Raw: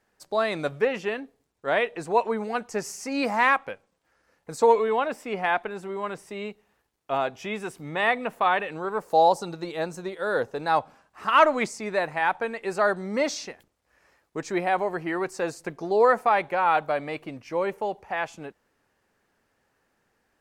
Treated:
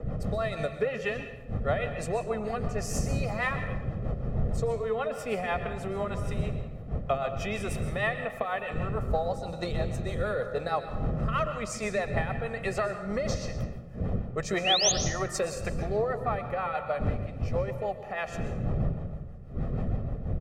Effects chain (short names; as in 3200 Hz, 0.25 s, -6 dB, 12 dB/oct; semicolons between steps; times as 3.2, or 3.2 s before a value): wind noise 260 Hz -30 dBFS; comb 1.6 ms, depth 68%; compressor 8:1, threshold -31 dBFS, peak gain reduction 22 dB; painted sound rise, 14.64–14.92, 2400–7100 Hz -32 dBFS; rotary speaker horn 6.3 Hz; on a send at -7 dB: reverb RT60 1.1 s, pre-delay 0.117 s; on the sum: three-band expander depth 40%; gain +6 dB